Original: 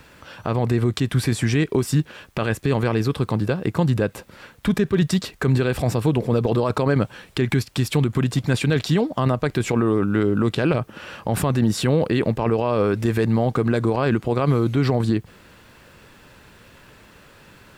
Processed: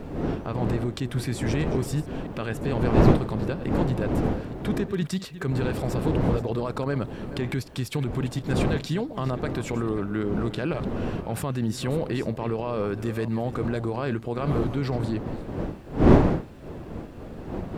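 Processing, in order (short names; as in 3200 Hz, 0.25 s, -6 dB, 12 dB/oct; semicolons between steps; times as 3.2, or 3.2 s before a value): reverse delay 0.324 s, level -13.5 dB; wind noise 340 Hz -20 dBFS; gain -8 dB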